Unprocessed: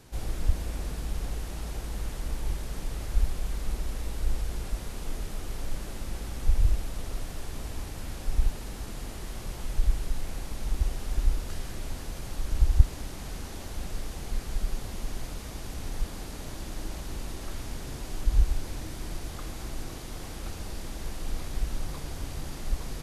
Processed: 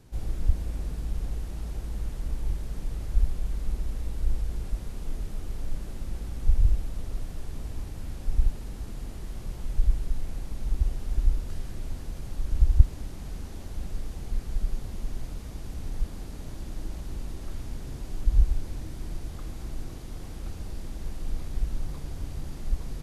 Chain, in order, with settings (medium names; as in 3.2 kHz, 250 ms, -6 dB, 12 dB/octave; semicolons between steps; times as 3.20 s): bass shelf 370 Hz +9.5 dB; trim -7.5 dB